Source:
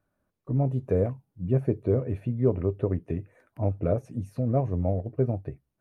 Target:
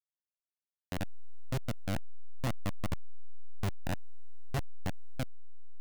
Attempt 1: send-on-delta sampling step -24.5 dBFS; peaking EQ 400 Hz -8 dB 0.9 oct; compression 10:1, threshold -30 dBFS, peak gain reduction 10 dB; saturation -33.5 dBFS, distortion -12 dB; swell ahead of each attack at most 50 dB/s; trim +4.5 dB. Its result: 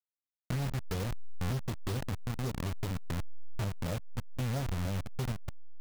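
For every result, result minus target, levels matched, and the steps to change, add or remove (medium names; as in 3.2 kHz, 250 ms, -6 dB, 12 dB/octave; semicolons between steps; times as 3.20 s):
compression: peak gain reduction +10 dB; send-on-delta sampling: distortion -13 dB
remove: compression 10:1, threshold -30 dBFS, peak gain reduction 10 dB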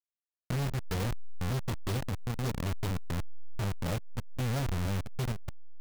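send-on-delta sampling: distortion -13 dB
change: send-on-delta sampling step -14 dBFS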